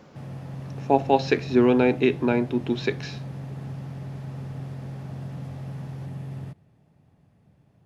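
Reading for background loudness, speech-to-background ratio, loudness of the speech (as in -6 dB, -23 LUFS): -36.5 LUFS, 14.0 dB, -22.5 LUFS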